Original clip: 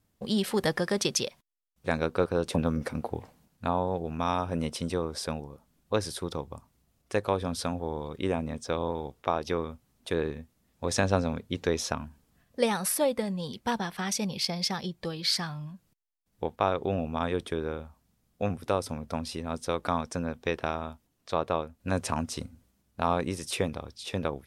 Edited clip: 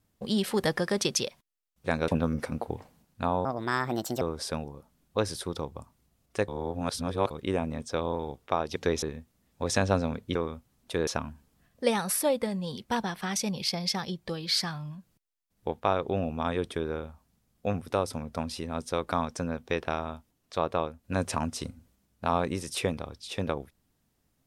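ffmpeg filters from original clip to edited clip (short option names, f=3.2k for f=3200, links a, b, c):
-filter_complex "[0:a]asplit=10[a][b][c][d][e][f][g][h][i][j];[a]atrim=end=2.082[k];[b]atrim=start=2.508:end=3.884[l];[c]atrim=start=3.88:end=4.97,asetpts=PTS-STARTPTS,asetrate=63063,aresample=44100[m];[d]atrim=start=4.966:end=7.242[n];[e]atrim=start=7.238:end=8.062,asetpts=PTS-STARTPTS,areverse[o];[f]atrim=start=8.058:end=9.522[p];[g]atrim=start=11.568:end=11.832[q];[h]atrim=start=10.238:end=11.572[r];[i]atrim=start=9.518:end=10.242[s];[j]atrim=start=11.828[t];[k][l]acrossfade=d=0.004:c1=hsin:c2=hsin[u];[u][m]acrossfade=d=0.004:c1=hsin:c2=hsin[v];[v][n]acrossfade=d=0.004:c1=hsin:c2=hsin[w];[w][o]acrossfade=d=0.004:c1=hsin:c2=hsin[x];[x][p]acrossfade=d=0.004:c1=hsin:c2=hsin[y];[y][q]acrossfade=d=0.004:c1=hsin:c2=hsin[z];[z][r]acrossfade=d=0.004:c1=hsin:c2=hsin[aa];[aa][s]acrossfade=d=0.004:c1=hsin:c2=hsin[ab];[ab][t]acrossfade=d=0.004:c1=hsin:c2=hsin"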